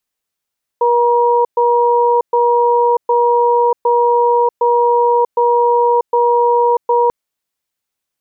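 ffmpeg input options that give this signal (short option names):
-f lavfi -i "aevalsrc='0.251*(sin(2*PI*479*t)+sin(2*PI*952*t))*clip(min(mod(t,0.76),0.64-mod(t,0.76))/0.005,0,1)':d=6.29:s=44100"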